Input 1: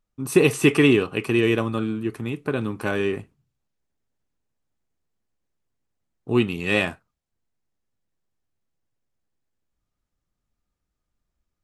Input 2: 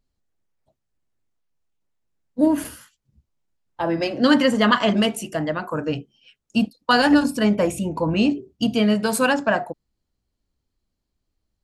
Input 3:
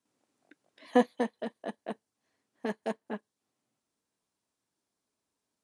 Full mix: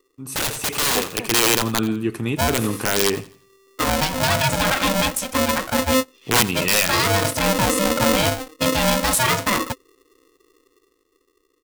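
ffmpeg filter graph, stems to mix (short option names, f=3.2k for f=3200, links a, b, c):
-filter_complex "[0:a]aeval=exprs='(mod(5.31*val(0)+1,2)-1)/5.31':c=same,volume=-6dB,asplit=3[a][b][c];[b]volume=-8.5dB[d];[1:a]lowshelf=f=160:t=q:w=3:g=12,aeval=exprs='val(0)*sgn(sin(2*PI*390*n/s))':c=same,volume=-6dB[e];[2:a]volume=-6dB[f];[c]apad=whole_len=512955[g];[e][g]sidechaincompress=threshold=-36dB:ratio=8:attack=10:release=116[h];[a][h]amix=inputs=2:normalize=0,dynaudnorm=f=310:g=9:m=11.5dB,alimiter=limit=-11.5dB:level=0:latency=1:release=39,volume=0dB[i];[d]aecho=0:1:85|170|255|340|425:1|0.34|0.116|0.0393|0.0134[j];[f][i][j]amix=inputs=3:normalize=0,highshelf=f=3.9k:g=6"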